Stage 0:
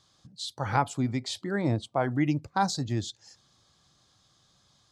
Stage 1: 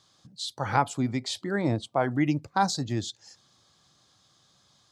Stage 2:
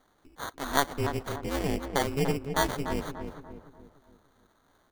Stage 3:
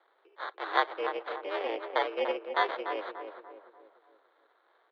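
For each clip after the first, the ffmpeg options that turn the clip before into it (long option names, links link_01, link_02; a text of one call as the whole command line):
ffmpeg -i in.wav -af "highpass=frequency=120:poles=1,volume=2dB" out.wav
ffmpeg -i in.wav -filter_complex "[0:a]acrusher=samples=17:mix=1:aa=0.000001,aeval=exprs='val(0)*sin(2*PI*140*n/s)':channel_layout=same,asplit=2[link_01][link_02];[link_02]adelay=292,lowpass=frequency=1500:poles=1,volume=-7dB,asplit=2[link_03][link_04];[link_04]adelay=292,lowpass=frequency=1500:poles=1,volume=0.46,asplit=2[link_05][link_06];[link_06]adelay=292,lowpass=frequency=1500:poles=1,volume=0.46,asplit=2[link_07][link_08];[link_08]adelay=292,lowpass=frequency=1500:poles=1,volume=0.46,asplit=2[link_09][link_10];[link_10]adelay=292,lowpass=frequency=1500:poles=1,volume=0.46[link_11];[link_01][link_03][link_05][link_07][link_09][link_11]amix=inputs=6:normalize=0" out.wav
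ffmpeg -i in.wav -af "highpass=frequency=330:width_type=q:width=0.5412,highpass=frequency=330:width_type=q:width=1.307,lowpass=frequency=3600:width_type=q:width=0.5176,lowpass=frequency=3600:width_type=q:width=0.7071,lowpass=frequency=3600:width_type=q:width=1.932,afreqshift=75" out.wav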